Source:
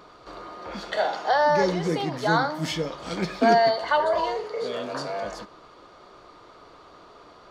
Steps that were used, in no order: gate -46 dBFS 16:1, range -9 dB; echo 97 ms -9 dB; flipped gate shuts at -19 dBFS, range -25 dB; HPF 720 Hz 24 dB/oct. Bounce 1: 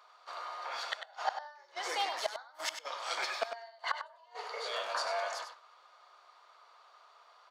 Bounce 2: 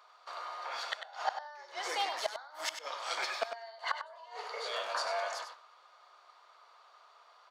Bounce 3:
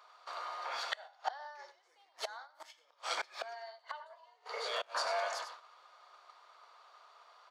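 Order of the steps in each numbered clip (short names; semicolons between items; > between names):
HPF > flipped gate > gate > echo; gate > HPF > flipped gate > echo; echo > flipped gate > gate > HPF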